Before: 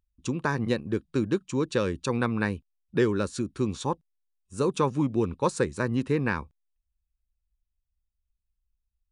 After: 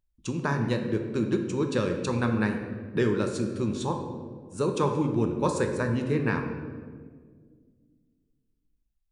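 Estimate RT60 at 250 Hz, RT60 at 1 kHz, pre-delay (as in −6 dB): 2.7 s, 1.6 s, 5 ms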